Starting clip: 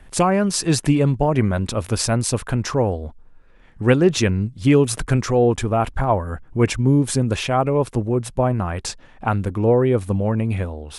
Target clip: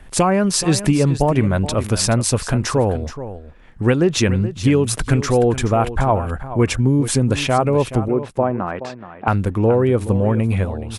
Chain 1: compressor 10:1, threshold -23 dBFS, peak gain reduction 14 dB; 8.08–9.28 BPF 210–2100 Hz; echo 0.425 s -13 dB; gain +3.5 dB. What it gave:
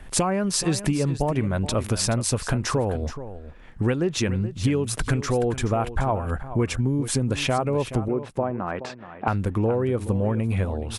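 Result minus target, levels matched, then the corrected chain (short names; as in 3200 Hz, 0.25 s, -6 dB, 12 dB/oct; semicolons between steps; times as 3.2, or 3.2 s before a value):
compressor: peak gain reduction +8 dB
compressor 10:1, threshold -14 dBFS, peak gain reduction 6 dB; 8.08–9.28 BPF 210–2100 Hz; echo 0.425 s -13 dB; gain +3.5 dB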